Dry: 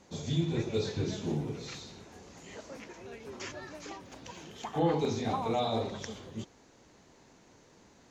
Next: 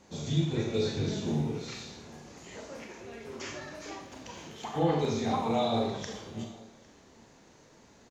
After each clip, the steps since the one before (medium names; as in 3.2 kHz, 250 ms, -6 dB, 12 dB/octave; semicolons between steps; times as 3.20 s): delay 805 ms -24 dB; on a send at -2 dB: reverberation RT60 0.65 s, pre-delay 27 ms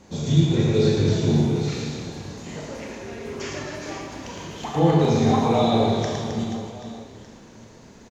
bass shelf 310 Hz +6 dB; reverse bouncing-ball echo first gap 110 ms, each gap 1.4×, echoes 5; trim +5.5 dB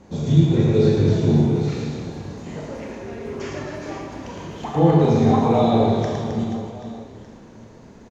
treble shelf 2.1 kHz -10 dB; trim +3 dB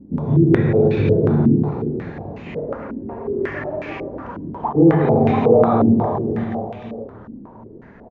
loudness maximiser +7.5 dB; step-sequenced low-pass 5.5 Hz 270–2500 Hz; trim -7.5 dB